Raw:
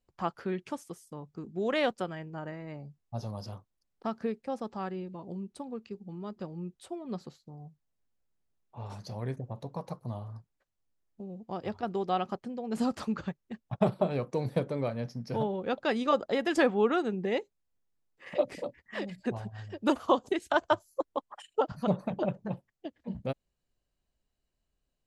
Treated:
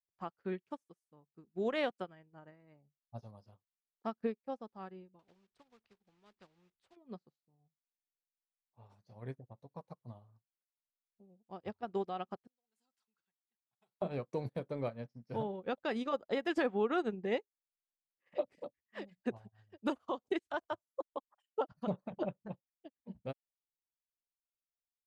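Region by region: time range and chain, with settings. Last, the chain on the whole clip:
0:05.19–0:06.97: one scale factor per block 5 bits + high-frequency loss of the air 130 metres + every bin compressed towards the loudest bin 2 to 1
0:12.47–0:14.02: first-order pre-emphasis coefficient 0.97 + notch comb filter 600 Hz
whole clip: bass and treble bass −1 dB, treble −4 dB; brickwall limiter −22.5 dBFS; expander for the loud parts 2.5 to 1, over −50 dBFS

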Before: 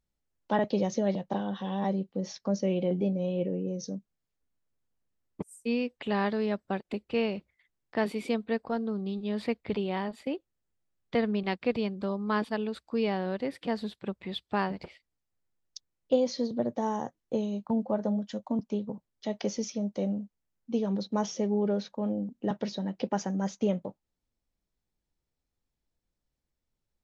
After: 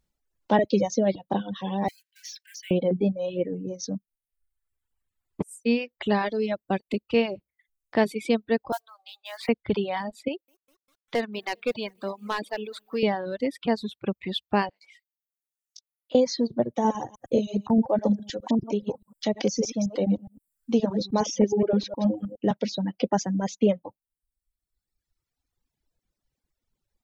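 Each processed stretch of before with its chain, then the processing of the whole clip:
0:01.88–0:02.71: mu-law and A-law mismatch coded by mu + linear-phase brick-wall high-pass 1,500 Hz + downward compressor 16 to 1, threshold −43 dBFS
0:08.72–0:09.49: Butterworth high-pass 660 Hz 48 dB per octave + noise that follows the level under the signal 17 dB
0:10.28–0:13.03: high-pass filter 620 Hz 6 dB per octave + hard clipping −24.5 dBFS + feedback echo at a low word length 200 ms, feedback 55%, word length 9 bits, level −15 dB
0:14.69–0:16.15: Bessel high-pass filter 1,500 Hz + downward compressor, threshold −52 dBFS + double-tracking delay 19 ms −4 dB
0:16.74–0:22.37: delay that plays each chunk backwards 104 ms, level −4 dB + one half of a high-frequency compander encoder only
whole clip: reverb reduction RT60 0.78 s; dynamic equaliser 1,300 Hz, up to −6 dB, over −51 dBFS, Q 2.3; reverb reduction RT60 1.5 s; level +7.5 dB

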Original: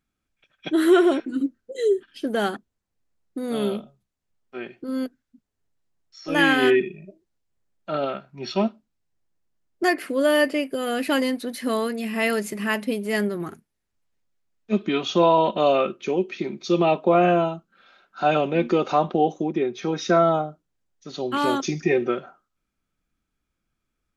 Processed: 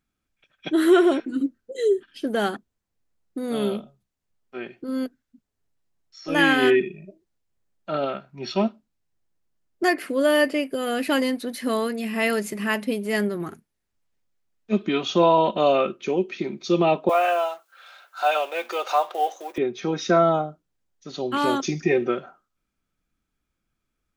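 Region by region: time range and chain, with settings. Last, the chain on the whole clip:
0:17.09–0:19.58: mu-law and A-law mismatch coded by mu + high-pass filter 580 Hz 24 dB per octave + high-shelf EQ 6,700 Hz +7 dB
whole clip: no processing

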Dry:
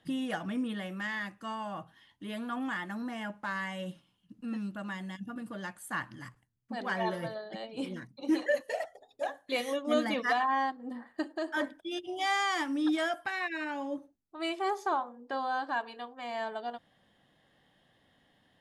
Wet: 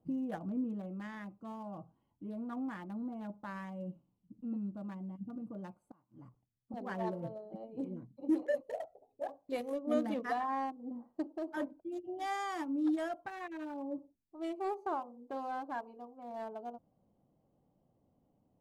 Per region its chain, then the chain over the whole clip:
0:05.74–0:06.74: low-pass filter 8,000 Hz + low-shelf EQ 240 Hz −6.5 dB + gate with flip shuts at −33 dBFS, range −24 dB
whole clip: adaptive Wiener filter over 25 samples; parametric band 3,100 Hz −12 dB 2.8 octaves; level −1.5 dB

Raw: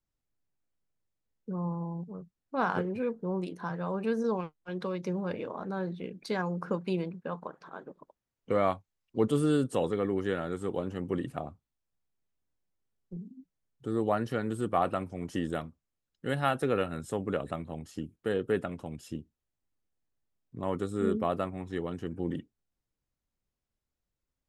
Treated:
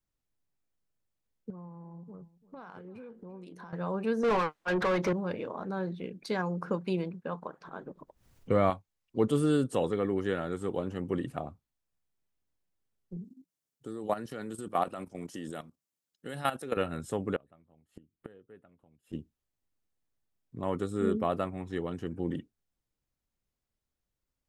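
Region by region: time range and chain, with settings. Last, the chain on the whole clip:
0:01.50–0:03.73: downward compressor 10 to 1, threshold −43 dBFS + single-tap delay 341 ms −18 dB
0:04.23–0:05.13: dynamic equaliser 1,600 Hz, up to +5 dB, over −50 dBFS, Q 1.3 + mid-hump overdrive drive 27 dB, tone 1,900 Hz, clips at −19.5 dBFS
0:07.65–0:08.70: low-shelf EQ 160 Hz +11.5 dB + upward compression, threshold −44 dBFS
0:13.24–0:16.77: high-pass filter 150 Hz + bass and treble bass 0 dB, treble +8 dB + output level in coarse steps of 13 dB
0:17.36–0:19.13: parametric band 5,500 Hz −15 dB 0.87 octaves + gate with flip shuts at −36 dBFS, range −25 dB
whole clip: no processing

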